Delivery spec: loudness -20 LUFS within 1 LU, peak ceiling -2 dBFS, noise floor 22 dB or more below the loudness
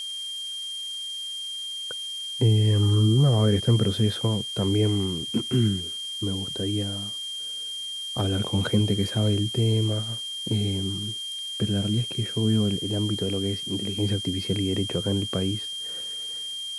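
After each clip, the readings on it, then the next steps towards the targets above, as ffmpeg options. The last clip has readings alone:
steady tone 3200 Hz; tone level -31 dBFS; noise floor -34 dBFS; noise floor target -48 dBFS; loudness -25.5 LUFS; peak -9.5 dBFS; loudness target -20.0 LUFS
-> -af "bandreject=f=3.2k:w=30"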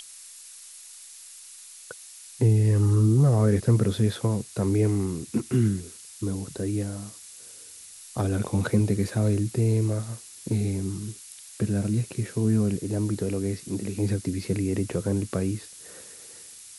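steady tone none; noise floor -46 dBFS; noise floor target -48 dBFS
-> -af "afftdn=nr=6:nf=-46"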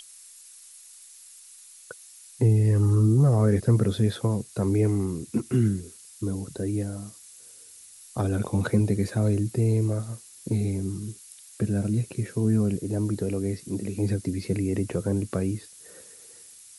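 noise floor -49 dBFS; loudness -25.5 LUFS; peak -10.0 dBFS; loudness target -20.0 LUFS
-> -af "volume=5.5dB"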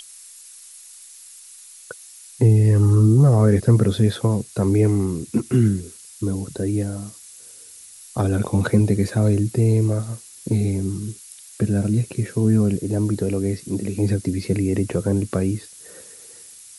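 loudness -20.0 LUFS; peak -4.5 dBFS; noise floor -44 dBFS

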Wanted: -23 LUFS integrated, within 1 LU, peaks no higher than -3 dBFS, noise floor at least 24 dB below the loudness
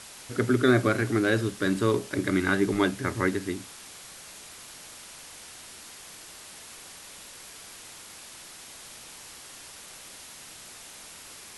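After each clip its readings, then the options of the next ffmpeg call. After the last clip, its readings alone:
noise floor -46 dBFS; noise floor target -50 dBFS; loudness -26.0 LUFS; peak -8.0 dBFS; loudness target -23.0 LUFS
-> -af "afftdn=nr=6:nf=-46"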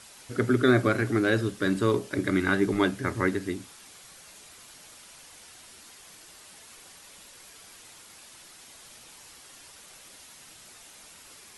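noise floor -51 dBFS; loudness -26.0 LUFS; peak -8.0 dBFS; loudness target -23.0 LUFS
-> -af "volume=3dB"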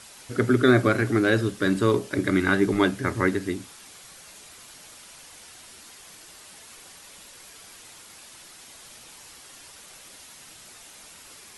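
loudness -23.0 LUFS; peak -5.0 dBFS; noise floor -48 dBFS

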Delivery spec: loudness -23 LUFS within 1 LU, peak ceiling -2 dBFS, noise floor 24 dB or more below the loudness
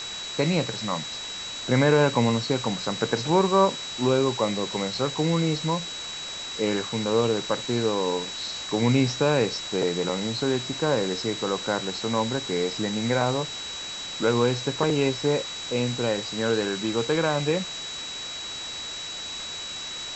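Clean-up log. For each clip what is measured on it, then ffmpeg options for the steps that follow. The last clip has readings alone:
steady tone 3900 Hz; tone level -34 dBFS; noise floor -35 dBFS; noise floor target -50 dBFS; loudness -25.5 LUFS; peak -8.0 dBFS; loudness target -23.0 LUFS
-> -af "bandreject=f=3.9k:w=30"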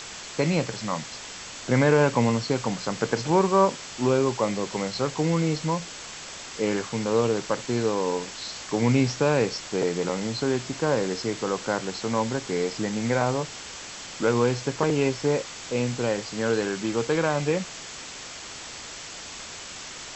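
steady tone none; noise floor -40 dBFS; noise floor target -50 dBFS
-> -af "afftdn=nr=10:nf=-40"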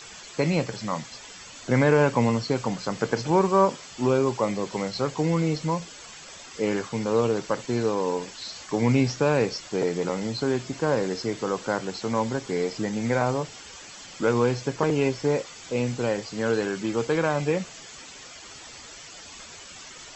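noise floor -44 dBFS; noise floor target -50 dBFS
-> -af "afftdn=nr=6:nf=-44"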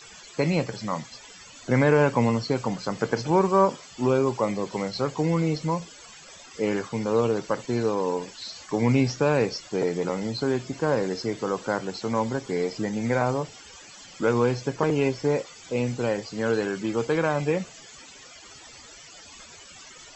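noise floor -47 dBFS; noise floor target -50 dBFS
-> -af "afftdn=nr=6:nf=-47"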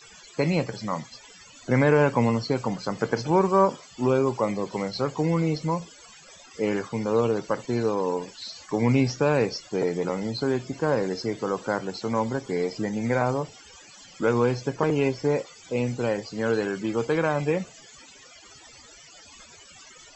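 noise floor -50 dBFS; loudness -25.5 LUFS; peak -8.5 dBFS; loudness target -23.0 LUFS
-> -af "volume=2.5dB"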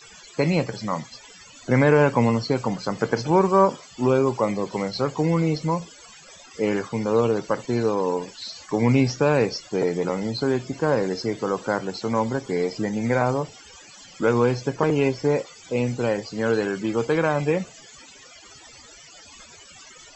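loudness -23.0 LUFS; peak -6.0 dBFS; noise floor -47 dBFS

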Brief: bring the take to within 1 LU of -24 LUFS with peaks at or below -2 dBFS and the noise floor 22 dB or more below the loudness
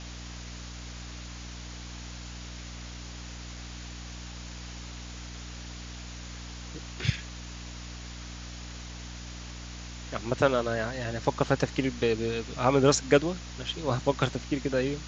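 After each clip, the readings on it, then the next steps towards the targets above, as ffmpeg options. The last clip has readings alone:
hum 60 Hz; harmonics up to 300 Hz; hum level -40 dBFS; noise floor -42 dBFS; noise floor target -54 dBFS; loudness -32.0 LUFS; peak -7.5 dBFS; loudness target -24.0 LUFS
-> -af "bandreject=f=60:t=h:w=6,bandreject=f=120:t=h:w=6,bandreject=f=180:t=h:w=6,bandreject=f=240:t=h:w=6,bandreject=f=300:t=h:w=6"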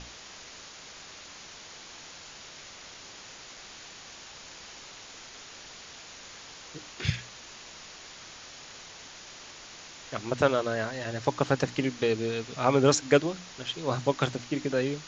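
hum none; noise floor -47 dBFS; noise floor target -51 dBFS
-> -af "afftdn=nr=6:nf=-47"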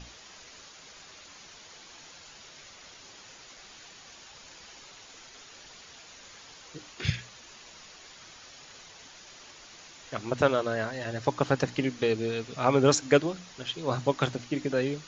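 noise floor -51 dBFS; loudness -28.5 LUFS; peak -7.0 dBFS; loudness target -24.0 LUFS
-> -af "volume=4.5dB"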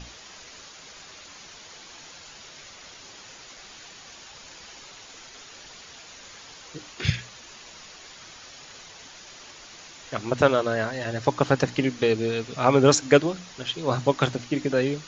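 loudness -24.0 LUFS; peak -2.5 dBFS; noise floor -46 dBFS

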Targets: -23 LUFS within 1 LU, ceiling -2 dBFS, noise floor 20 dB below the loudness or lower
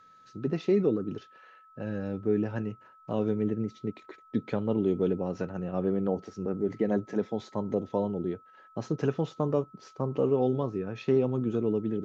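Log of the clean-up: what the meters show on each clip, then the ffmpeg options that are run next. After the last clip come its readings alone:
steady tone 1300 Hz; tone level -54 dBFS; loudness -30.5 LUFS; peak -13.5 dBFS; loudness target -23.0 LUFS
-> -af "bandreject=f=1.3k:w=30"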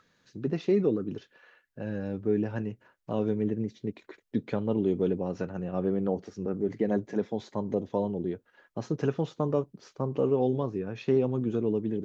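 steady tone none; loudness -30.5 LUFS; peak -13.5 dBFS; loudness target -23.0 LUFS
-> -af "volume=7.5dB"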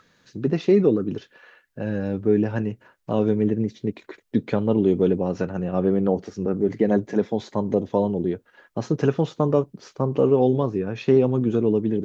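loudness -23.0 LUFS; peak -6.0 dBFS; noise floor -63 dBFS

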